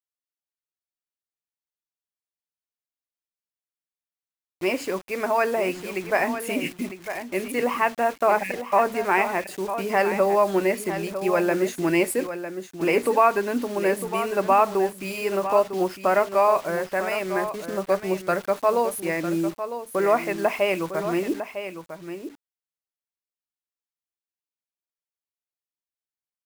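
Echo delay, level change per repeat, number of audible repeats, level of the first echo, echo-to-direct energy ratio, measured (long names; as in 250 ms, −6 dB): 953 ms, repeats not evenly spaced, 1, −10.0 dB, −10.0 dB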